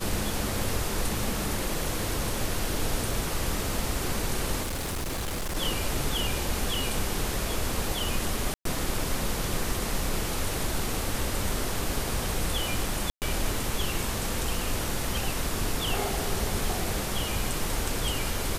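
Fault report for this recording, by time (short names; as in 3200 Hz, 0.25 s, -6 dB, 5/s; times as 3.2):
4.63–5.57 clipped -28 dBFS
8.54–8.65 gap 0.113 s
13.1–13.22 gap 0.118 s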